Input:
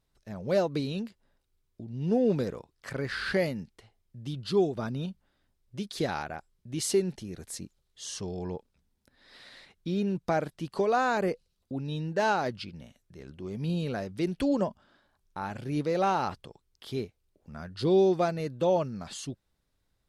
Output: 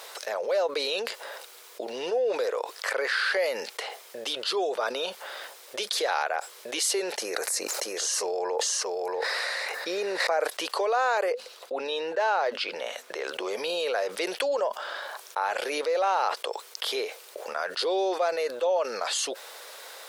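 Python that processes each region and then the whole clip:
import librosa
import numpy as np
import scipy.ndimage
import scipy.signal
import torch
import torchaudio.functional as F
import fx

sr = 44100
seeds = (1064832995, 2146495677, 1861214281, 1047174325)

y = fx.chain(x, sr, fx.peak_eq(hz=3300.0, db=-13.0, octaves=0.43),
    fx.echo_single(ms=633, db=-5.0),
    fx.sustainer(db_per_s=29.0), at=(7.18, 10.47))
y = fx.chain(y, sr, fx.high_shelf(hz=4800.0, db=-10.0),
    fx.hum_notches(base_hz=50, count=5), at=(11.32, 13.24))
y = scipy.signal.sosfilt(scipy.signal.cheby1(4, 1.0, 480.0, 'highpass', fs=sr, output='sos'), y)
y = fx.env_flatten(y, sr, amount_pct=70)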